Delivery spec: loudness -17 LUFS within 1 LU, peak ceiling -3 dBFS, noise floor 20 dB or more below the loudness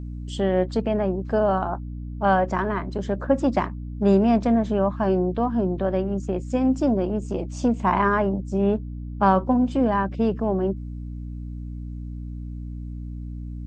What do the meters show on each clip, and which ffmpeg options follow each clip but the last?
hum 60 Hz; highest harmonic 300 Hz; hum level -31 dBFS; loudness -23.0 LUFS; peak level -5.0 dBFS; loudness target -17.0 LUFS
-> -af "bandreject=f=60:t=h:w=4,bandreject=f=120:t=h:w=4,bandreject=f=180:t=h:w=4,bandreject=f=240:t=h:w=4,bandreject=f=300:t=h:w=4"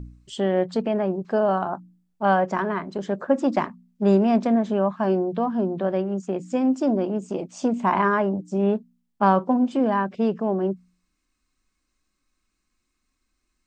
hum not found; loudness -23.5 LUFS; peak level -5.0 dBFS; loudness target -17.0 LUFS
-> -af "volume=2.11,alimiter=limit=0.708:level=0:latency=1"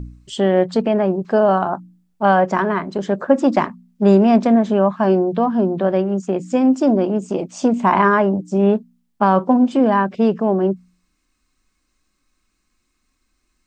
loudness -17.0 LUFS; peak level -3.0 dBFS; noise floor -69 dBFS

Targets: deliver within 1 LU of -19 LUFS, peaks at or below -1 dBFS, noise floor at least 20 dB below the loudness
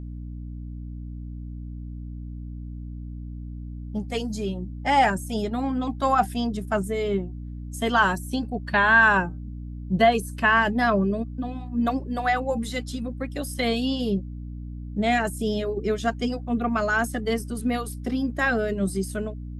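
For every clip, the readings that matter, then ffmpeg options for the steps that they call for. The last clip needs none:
hum 60 Hz; highest harmonic 300 Hz; hum level -33 dBFS; loudness -24.5 LUFS; peak level -7.0 dBFS; loudness target -19.0 LUFS
-> -af "bandreject=f=60:t=h:w=6,bandreject=f=120:t=h:w=6,bandreject=f=180:t=h:w=6,bandreject=f=240:t=h:w=6,bandreject=f=300:t=h:w=6"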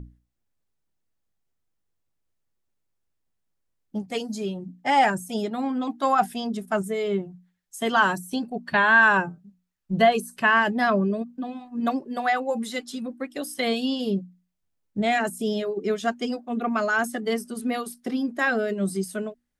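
hum not found; loudness -24.5 LUFS; peak level -7.0 dBFS; loudness target -19.0 LUFS
-> -af "volume=1.88"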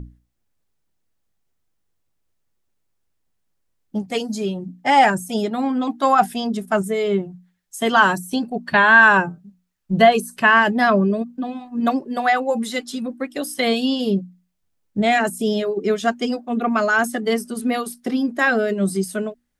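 loudness -19.0 LUFS; peak level -1.5 dBFS; noise floor -71 dBFS

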